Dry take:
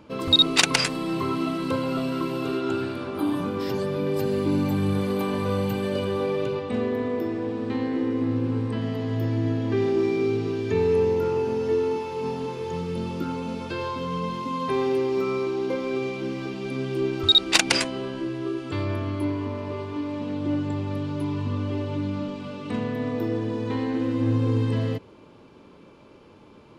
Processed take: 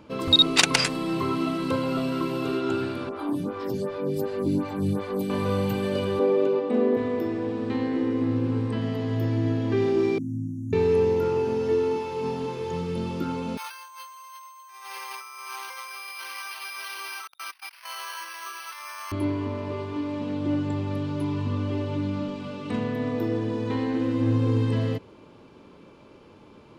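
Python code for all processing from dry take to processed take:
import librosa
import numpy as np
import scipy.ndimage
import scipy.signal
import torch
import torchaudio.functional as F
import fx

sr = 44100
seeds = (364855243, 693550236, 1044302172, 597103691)

y = fx.chain(x, sr, fx.peak_eq(hz=2800.0, db=-3.5, octaves=0.79),
    fx.stagger_phaser(hz=2.7), at=(3.09, 5.3))
y = fx.chain(y, sr, fx.highpass(hz=240.0, slope=24),
    fx.tilt_shelf(db=7.0, hz=1100.0), at=(6.19, 6.97))
y = fx.chain(y, sr, fx.brickwall_bandstop(low_hz=310.0, high_hz=5600.0),
    fx.peak_eq(hz=5400.0, db=-13.0, octaves=1.3), at=(10.18, 10.73))
y = fx.chain(y, sr, fx.ellip_bandpass(low_hz=970.0, high_hz=4100.0, order=3, stop_db=70),
    fx.over_compress(threshold_db=-43.0, ratio=-1.0),
    fx.resample_bad(factor=6, down='filtered', up='hold'), at=(13.57, 19.12))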